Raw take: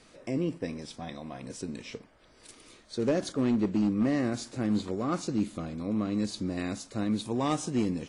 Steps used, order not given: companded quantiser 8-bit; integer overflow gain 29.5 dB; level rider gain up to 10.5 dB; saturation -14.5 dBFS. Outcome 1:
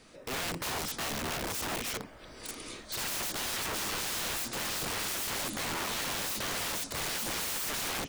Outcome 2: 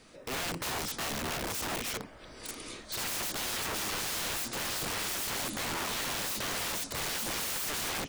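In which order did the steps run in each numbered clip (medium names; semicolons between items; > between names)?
companded quantiser > level rider > integer overflow > saturation; level rider > companded quantiser > integer overflow > saturation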